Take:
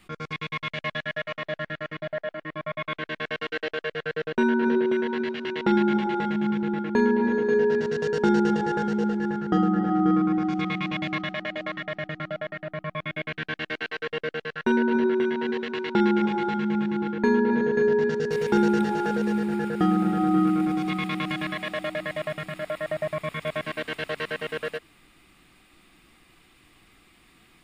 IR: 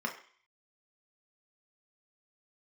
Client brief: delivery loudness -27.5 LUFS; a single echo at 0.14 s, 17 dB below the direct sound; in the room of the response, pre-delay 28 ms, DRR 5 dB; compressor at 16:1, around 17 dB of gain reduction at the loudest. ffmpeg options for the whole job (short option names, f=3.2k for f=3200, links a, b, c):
-filter_complex "[0:a]acompressor=threshold=-34dB:ratio=16,aecho=1:1:140:0.141,asplit=2[a][b];[1:a]atrim=start_sample=2205,adelay=28[c];[b][c]afir=irnorm=-1:irlink=0,volume=-10dB[d];[a][d]amix=inputs=2:normalize=0,volume=8dB"